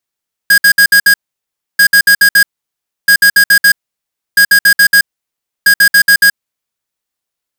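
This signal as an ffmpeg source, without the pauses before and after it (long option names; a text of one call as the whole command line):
ffmpeg -f lavfi -i "aevalsrc='0.531*(2*lt(mod(1640*t,1),0.5)-1)*clip(min(mod(mod(t,1.29),0.14),0.08-mod(mod(t,1.29),0.14))/0.005,0,1)*lt(mod(t,1.29),0.7)':duration=6.45:sample_rate=44100" out.wav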